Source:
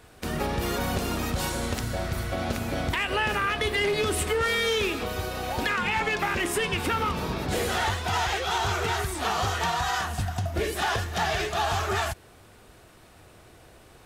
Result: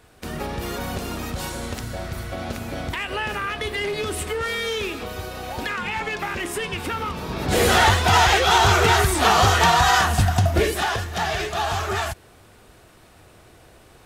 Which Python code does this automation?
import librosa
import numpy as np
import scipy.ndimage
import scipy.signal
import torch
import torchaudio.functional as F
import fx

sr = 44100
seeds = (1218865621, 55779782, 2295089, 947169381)

y = fx.gain(x, sr, db=fx.line((7.25, -1.0), (7.66, 10.5), (10.49, 10.5), (10.92, 2.0)))